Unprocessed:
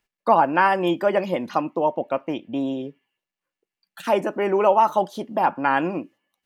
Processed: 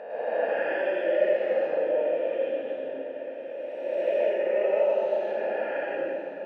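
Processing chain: spectral swells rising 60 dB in 1.93 s; vowel filter e; diffused feedback echo 1.025 s, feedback 50%, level -11 dB; reverb RT60 2.2 s, pre-delay 0.102 s, DRR -7.5 dB; gain -8.5 dB

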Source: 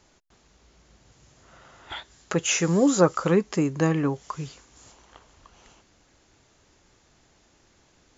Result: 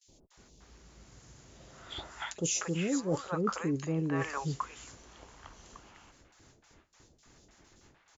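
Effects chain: gate with hold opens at -50 dBFS; three bands offset in time highs, lows, mids 70/300 ms, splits 670/3200 Hz; reverse; compressor 6:1, threshold -31 dBFS, peak gain reduction 15 dB; reverse; gain +2 dB

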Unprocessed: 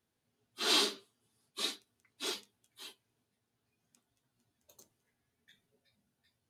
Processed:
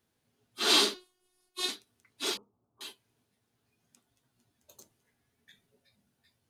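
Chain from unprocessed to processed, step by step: 0.94–1.69 robotiser 364 Hz; 2.37–2.81 elliptic low-pass 1200 Hz; gain +5 dB

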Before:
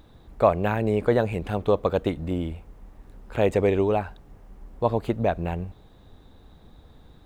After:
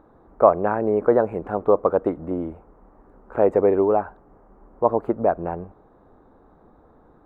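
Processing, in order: EQ curve 110 Hz 0 dB, 330 Hz +13 dB, 1300 Hz +14 dB, 3300 Hz -15 dB, 7300 Hz -11 dB; gain -9 dB

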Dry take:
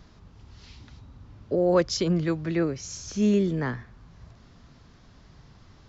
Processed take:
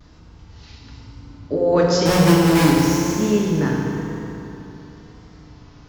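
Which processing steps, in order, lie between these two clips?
2.05–2.96 half-waves squared off; FDN reverb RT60 3.3 s, high-frequency decay 0.75×, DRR -3.5 dB; vibrato 1 Hz 48 cents; gain +2 dB

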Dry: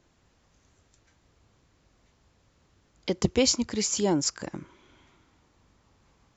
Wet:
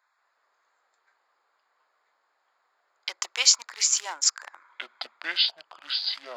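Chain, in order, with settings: Wiener smoothing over 15 samples; HPF 1100 Hz 24 dB/oct; echoes that change speed 0.186 s, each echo -7 st, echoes 2, each echo -6 dB; gain +7 dB

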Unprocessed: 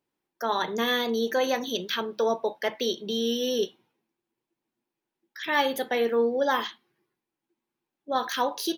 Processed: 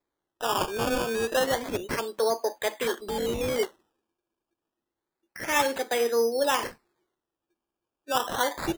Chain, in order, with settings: wow and flutter 23 cents; HPF 270 Hz 24 dB/oct; decimation with a swept rate 15×, swing 100% 0.29 Hz

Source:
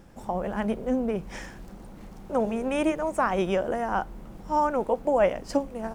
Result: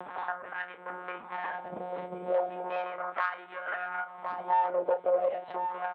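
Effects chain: tilt -3.5 dB/oct; compressor 6:1, threshold -24 dBFS, peak gain reduction 11 dB; harmonic tremolo 2.3 Hz, depth 70%, crossover 590 Hz; monotone LPC vocoder at 8 kHz 180 Hz; tube stage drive 25 dB, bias 0.3; doubler 32 ms -11 dB; on a send: echo 1.062 s -17 dB; on the sum: LFO high-pass sine 0.35 Hz 530–1600 Hz; three-band squash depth 70%; gain +7 dB

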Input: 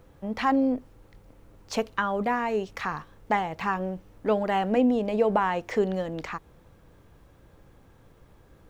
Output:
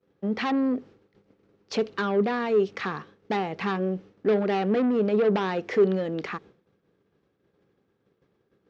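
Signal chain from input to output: expander -43 dBFS; soft clip -24.5 dBFS, distortion -10 dB; speaker cabinet 150–5500 Hz, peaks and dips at 200 Hz +5 dB, 400 Hz +9 dB, 640 Hz -3 dB, 950 Hz -6 dB; gain +3 dB

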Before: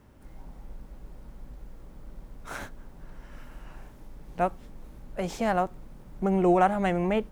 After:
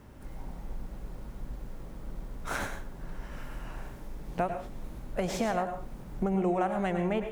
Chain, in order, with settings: compressor 6:1, threshold -31 dBFS, peak gain reduction 14 dB; on a send: reverb RT60 0.35 s, pre-delay 92 ms, DRR 7 dB; on the sum: gain +4.5 dB

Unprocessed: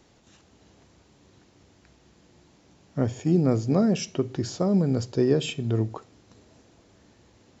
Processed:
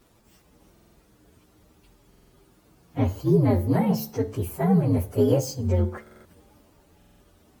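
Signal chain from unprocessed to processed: inharmonic rescaling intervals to 128%; de-hum 73.26 Hz, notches 30; stuck buffer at 0.72/2.09/6.02/6.98, samples 2048, times 4; gain +4 dB

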